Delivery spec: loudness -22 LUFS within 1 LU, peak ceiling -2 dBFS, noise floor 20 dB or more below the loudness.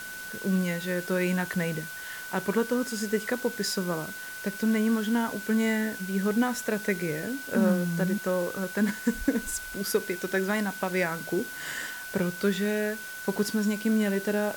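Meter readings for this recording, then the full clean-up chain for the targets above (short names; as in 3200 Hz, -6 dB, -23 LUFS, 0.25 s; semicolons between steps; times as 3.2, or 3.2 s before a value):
steady tone 1500 Hz; tone level -38 dBFS; noise floor -39 dBFS; noise floor target -49 dBFS; loudness -28.5 LUFS; peak -12.0 dBFS; loudness target -22.0 LUFS
-> notch 1500 Hz, Q 30; denoiser 10 dB, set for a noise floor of -39 dBFS; gain +6.5 dB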